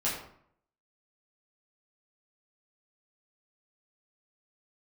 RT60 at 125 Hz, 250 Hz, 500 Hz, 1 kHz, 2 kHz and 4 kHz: 0.75, 0.70, 0.65, 0.65, 0.50, 0.40 seconds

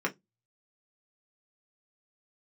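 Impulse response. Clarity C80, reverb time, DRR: 35.0 dB, 0.15 s, −1.5 dB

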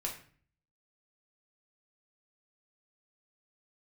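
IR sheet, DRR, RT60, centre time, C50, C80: −1.5 dB, 0.45 s, 23 ms, 8.0 dB, 12.5 dB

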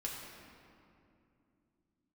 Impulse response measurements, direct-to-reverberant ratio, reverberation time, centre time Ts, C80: −3.5 dB, 2.7 s, 102 ms, 2.5 dB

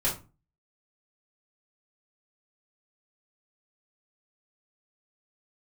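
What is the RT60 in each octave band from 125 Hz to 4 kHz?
0.45, 0.45, 0.30, 0.30, 0.25, 0.20 seconds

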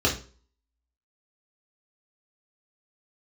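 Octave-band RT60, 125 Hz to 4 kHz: 0.40, 0.40, 0.45, 0.35, 0.35, 0.35 seconds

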